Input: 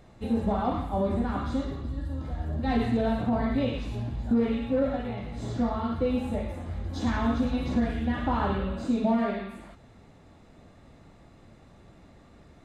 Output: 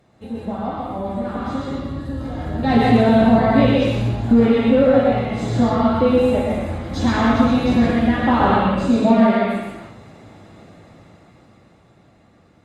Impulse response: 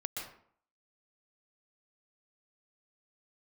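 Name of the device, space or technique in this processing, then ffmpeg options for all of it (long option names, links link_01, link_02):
far-field microphone of a smart speaker: -filter_complex "[1:a]atrim=start_sample=2205[link_01];[0:a][link_01]afir=irnorm=-1:irlink=0,highpass=91,dynaudnorm=framelen=230:gausssize=17:maxgain=16.5dB" -ar 48000 -c:a libopus -b:a 48k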